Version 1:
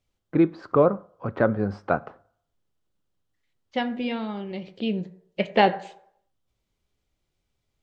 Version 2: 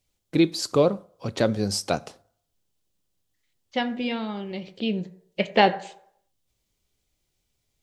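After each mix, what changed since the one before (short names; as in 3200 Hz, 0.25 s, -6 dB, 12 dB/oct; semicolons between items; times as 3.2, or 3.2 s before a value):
first voice: remove synth low-pass 1400 Hz, resonance Q 2.4; master: add high shelf 4800 Hz +11.5 dB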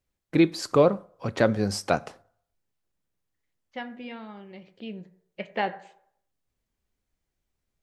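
second voice -11.5 dB; master: add EQ curve 410 Hz 0 dB, 1800 Hz +5 dB, 3700 Hz -5 dB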